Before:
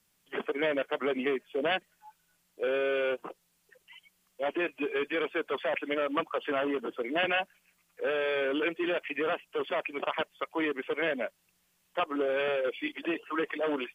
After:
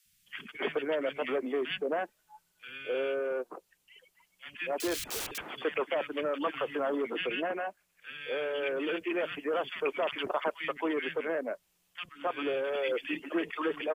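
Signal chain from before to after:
0:04.78–0:05.38: wrap-around overflow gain 34.5 dB
speech leveller within 4 dB 0.5 s
three-band delay without the direct sound highs, lows, mids 50/270 ms, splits 190/1,700 Hz

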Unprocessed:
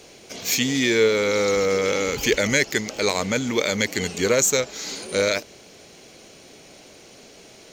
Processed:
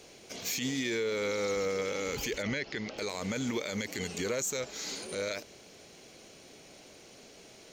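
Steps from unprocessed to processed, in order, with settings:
0:02.42–0:02.98: low-pass filter 4,700 Hz 24 dB per octave
brickwall limiter −17 dBFS, peak gain reduction 10.5 dB
level −6.5 dB

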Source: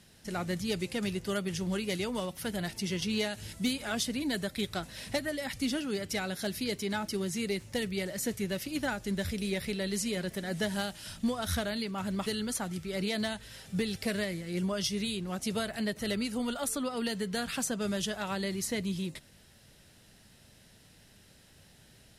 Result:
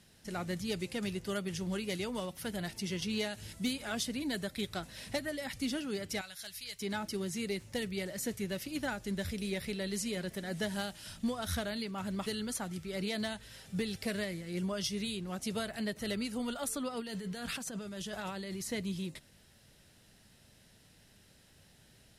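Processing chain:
0:06.21–0:06.81: guitar amp tone stack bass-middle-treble 10-0-10
0:17.00–0:18.67: compressor whose output falls as the input rises −37 dBFS, ratio −1
level −3.5 dB

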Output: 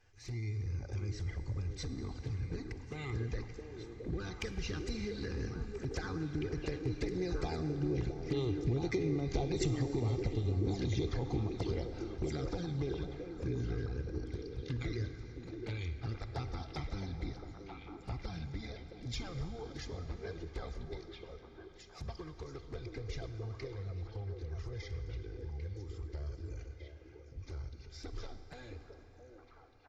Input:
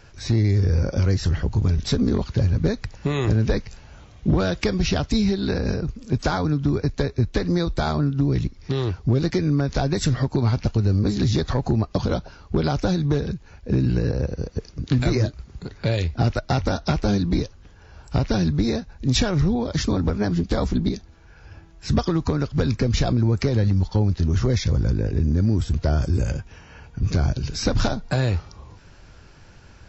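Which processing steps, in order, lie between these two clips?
source passing by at 0:09.39, 16 m/s, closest 17 metres
parametric band 2,100 Hz +9 dB 0.21 octaves
comb filter 2.5 ms, depth 50%
downward compressor 4 to 1, threshold −35 dBFS, peak gain reduction 15.5 dB
flanger swept by the level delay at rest 11.1 ms, full sweep at −32 dBFS
echo through a band-pass that steps 667 ms, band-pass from 400 Hz, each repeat 1.4 octaves, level −1.5 dB
convolution reverb RT60 5.0 s, pre-delay 38 ms, DRR 9 dB
level +1.5 dB

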